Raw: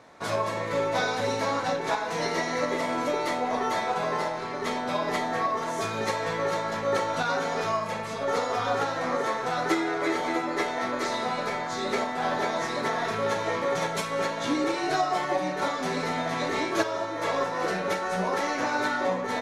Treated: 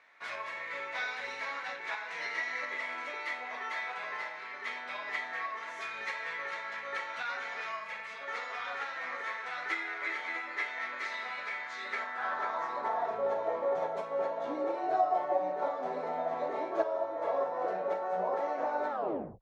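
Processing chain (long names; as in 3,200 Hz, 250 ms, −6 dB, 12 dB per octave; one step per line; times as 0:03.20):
turntable brake at the end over 0.51 s
bit reduction 12 bits
band-pass filter sweep 2,100 Hz → 660 Hz, 0:11.79–0:13.23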